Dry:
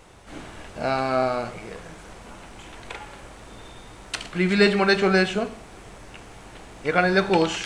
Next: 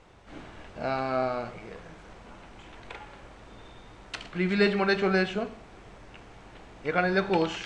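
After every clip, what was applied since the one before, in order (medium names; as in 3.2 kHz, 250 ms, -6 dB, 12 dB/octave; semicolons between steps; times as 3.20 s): distance through air 96 m; trim -5 dB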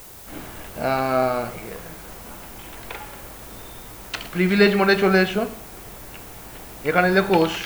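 added noise blue -51 dBFS; trim +7.5 dB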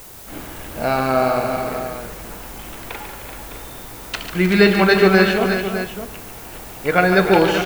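multi-tap echo 144/308/382/609 ms -8.5/-12/-9/-10.5 dB; trim +2.5 dB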